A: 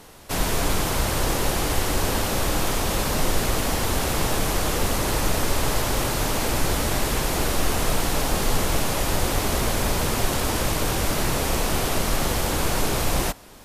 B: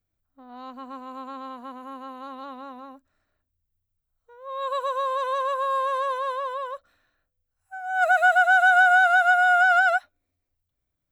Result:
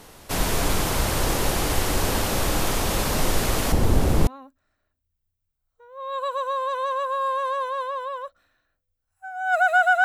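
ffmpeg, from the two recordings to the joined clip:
-filter_complex "[0:a]asettb=1/sr,asplit=3[a][b][c];[a]atrim=end=3.724[d];[b]atrim=start=3.72:end=4.27,asetpts=PTS-STARTPTS,afade=t=in:d=0.004:c=qsin,afade=t=out:st=0.546:d=0.004:c=qsin,tiltshelf=f=660:g=7.5[e];[c]atrim=start=4.266[f];[d][e]acrossfade=d=0.004:c1=hsin:c2=qsin[g];[g][f]acrossfade=d=0.004:c1=qsin:c2=hsin,apad=whole_dur=10.04,atrim=end=10.04,atrim=end=4.272[h];[1:a]atrim=start=2.758:end=8.53[i];[h][i]acrossfade=d=0.004:c1=hsin:c2=hsin"

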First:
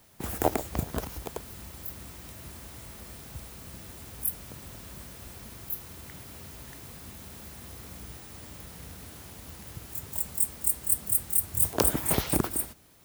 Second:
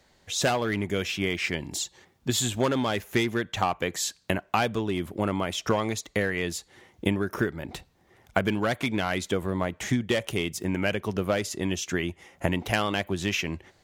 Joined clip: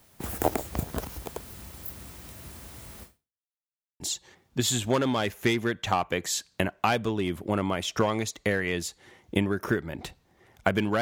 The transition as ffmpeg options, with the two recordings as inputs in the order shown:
-filter_complex "[0:a]apad=whole_dur=11.01,atrim=end=11.01,asplit=2[a][b];[a]atrim=end=3.49,asetpts=PTS-STARTPTS,afade=t=out:st=3.03:d=0.46:c=exp[c];[b]atrim=start=3.49:end=4,asetpts=PTS-STARTPTS,volume=0[d];[1:a]atrim=start=1.7:end=8.71,asetpts=PTS-STARTPTS,afade=t=in:d=0.004:c=hsin[e];[c][d][e]concat=n=3:v=0:a=1"

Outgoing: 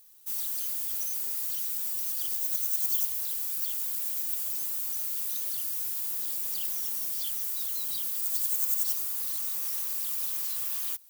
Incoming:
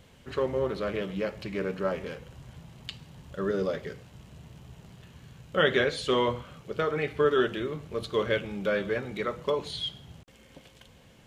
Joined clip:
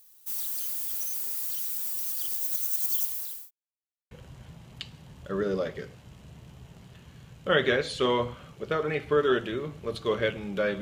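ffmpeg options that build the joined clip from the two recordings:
-filter_complex "[0:a]apad=whole_dur=10.81,atrim=end=10.81,asplit=2[a][b];[a]atrim=end=3.51,asetpts=PTS-STARTPTS,afade=t=out:st=2.96:d=0.55:c=qsin[c];[b]atrim=start=3.51:end=4.11,asetpts=PTS-STARTPTS,volume=0[d];[1:a]atrim=start=2.19:end=8.89,asetpts=PTS-STARTPTS,afade=t=in:d=0.004:c=hsin[e];[c][d][e]concat=n=3:v=0:a=1"

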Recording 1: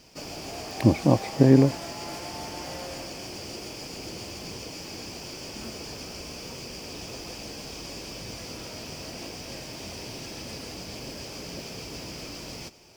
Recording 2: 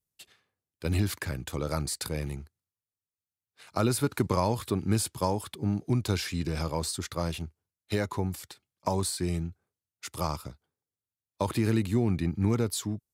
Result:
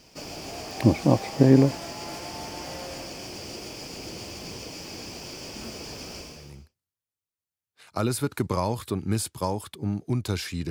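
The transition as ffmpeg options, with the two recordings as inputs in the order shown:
-filter_complex "[0:a]apad=whole_dur=10.7,atrim=end=10.7,atrim=end=6.77,asetpts=PTS-STARTPTS[a];[1:a]atrim=start=1.97:end=6.5,asetpts=PTS-STARTPTS[b];[a][b]acrossfade=d=0.6:c1=qua:c2=qua"

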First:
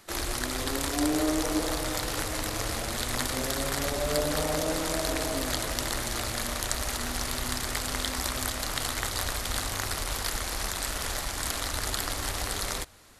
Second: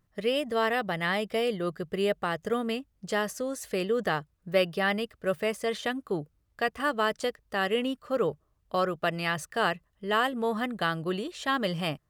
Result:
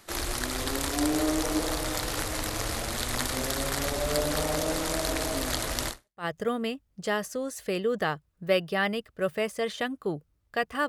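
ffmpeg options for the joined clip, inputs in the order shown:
-filter_complex "[0:a]apad=whole_dur=10.88,atrim=end=10.88,atrim=end=6.25,asetpts=PTS-STARTPTS[a];[1:a]atrim=start=1.94:end=6.93,asetpts=PTS-STARTPTS[b];[a][b]acrossfade=d=0.36:c1=exp:c2=exp"

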